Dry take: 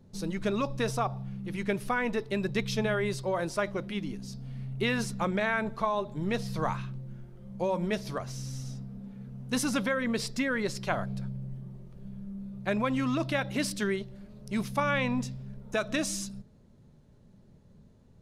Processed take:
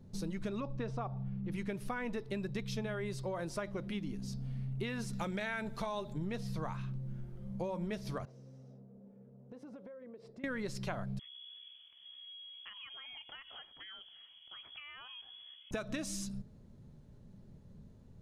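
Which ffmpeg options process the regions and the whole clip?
-filter_complex "[0:a]asettb=1/sr,asplit=3[a][b][c];[a]atrim=end=0.604[d];[b]atrim=start=0.6:end=1.52,asetpts=PTS-STARTPTS,afade=t=in:d=0.004:c=qsin,afade=t=out:st=0.916:d=0.004:c=qsin,lowpass=5.6k,highshelf=f=3k:g=-11[e];[c]atrim=start=1.516[f];[d][e]acrossfade=d=0.004:c1=hsin:c2=qsin[g];[g][f]acrossfade=d=0.004:c1=qsin:c2=hsin,asettb=1/sr,asplit=3[h][i][j];[h]atrim=end=5.134[k];[i]atrim=start=5.13:end=6.13,asetpts=PTS-STARTPTS,afade=t=in:d=0.004:c=qsin,afade=t=out:st=0.996:d=0.004:c=qsin,highshelf=f=2.2k:g=10.5,bandreject=f=1.1k:w=11[l];[j]atrim=start=6.126[m];[k][l]acrossfade=d=0.004:c1=hsin:c2=qsin[n];[n][m]acrossfade=d=0.004:c1=qsin:c2=hsin,asettb=1/sr,asplit=3[o][p][q];[o]atrim=end=8.254[r];[p]atrim=start=8.25:end=10.44,asetpts=PTS-STARTPTS,afade=t=in:d=0.004:c=qsin,afade=t=out:st=2.186:d=0.004:c=qsin,bandpass=f=500:t=q:w=2.4,acompressor=threshold=-46dB:ratio=12:attack=3.2:release=140:knee=1:detection=peak[s];[q]atrim=start=10.436[t];[r][s]acrossfade=d=0.004:c1=hsin:c2=qsin[u];[u][t]acrossfade=d=0.004:c1=qsin:c2=hsin,asettb=1/sr,asplit=3[v][w][x];[v]atrim=end=11.194[y];[w]atrim=start=11.19:end=15.71,asetpts=PTS-STARTPTS,afade=t=in:d=0.004:c=qsin,afade=t=out:st=4.516:d=0.004:c=qsin,highpass=f=430:p=1,acompressor=threshold=-45dB:ratio=6:attack=3.2:release=140:knee=1:detection=peak,lowpass=f=3k:t=q:w=0.5098,lowpass=f=3k:t=q:w=0.6013,lowpass=f=3k:t=q:w=0.9,lowpass=f=3k:t=q:w=2.563,afreqshift=-3500[z];[x]atrim=start=15.706[aa];[y][z]acrossfade=d=0.004:c1=hsin:c2=qsin[ab];[ab][aa]acrossfade=d=0.004:c1=qsin:c2=hsin,lowshelf=f=250:g=5.5,acompressor=threshold=-33dB:ratio=5,volume=-2.5dB"

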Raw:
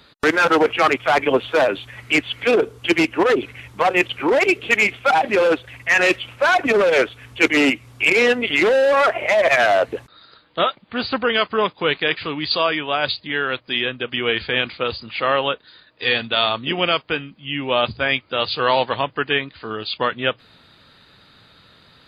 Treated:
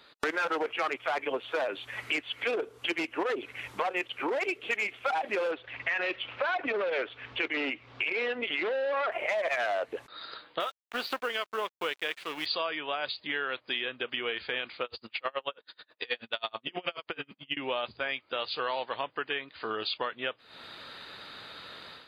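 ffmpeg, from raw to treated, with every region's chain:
-filter_complex "[0:a]asettb=1/sr,asplit=3[a][b][c];[a]atrim=end=5.514[d];[b]atrim=start=5.51:end=9.12,asetpts=PTS-STARTPTS,afade=t=in:d=0.004:c=qsin,afade=t=out:st=3.606:d=0.004:c=qsin,lowpass=f=4.3k:w=0.5412,lowpass=f=4.3k:w=1.3066,acompressor=threshold=-18dB:ratio=2.5:attack=3.2:release=140:knee=1:detection=peak[e];[c]atrim=start=9.116[f];[d][e]acrossfade=d=0.004:c1=hsin:c2=qsin[g];[g][f]acrossfade=d=0.004:c1=qsin:c2=hsin,asettb=1/sr,asplit=3[h][i][j];[h]atrim=end=10.604[k];[i]atrim=start=10.6:end=12.46,asetpts=PTS-STARTPTS,afade=t=in:d=0.004:c=qsin,afade=t=out:st=1.856:d=0.004:c=qsin,acrusher=bits=6:mode=log:mix=0:aa=0.000001,highpass=f=270:p=1,aeval=exprs='sgn(val(0))*max(abs(val(0))-0.0178,0)':c=same[l];[j]atrim=start=12.456[m];[k][l]acrossfade=d=0.004:c1=hsin:c2=qsin[n];[n][m]acrossfade=d=0.004:c1=qsin:c2=hsin,asettb=1/sr,asplit=3[o][p][q];[o]atrim=end=14.844[r];[p]atrim=start=14.84:end=17.57,asetpts=PTS-STARTPTS,afade=t=in:d=0.004:c=qsin,afade=t=out:st=2.726:d=0.004:c=qsin,asplit=2[s][t];[t]adelay=45,volume=-13dB[u];[s][u]amix=inputs=2:normalize=0,atrim=end_sample=120393,aeval=exprs='val(0)*pow(10,-38*(0.5-0.5*cos(2*PI*9.3*n/s))/20)':c=same[v];[q]atrim=start=17.566[w];[r][v]acrossfade=d=0.004:c1=hsin:c2=qsin[x];[x][w]acrossfade=d=0.004:c1=qsin:c2=hsin,dynaudnorm=f=160:g=3:m=11.5dB,bass=f=250:g=-14,treble=f=4k:g=-3,acompressor=threshold=-26dB:ratio=4,volume=-5dB"

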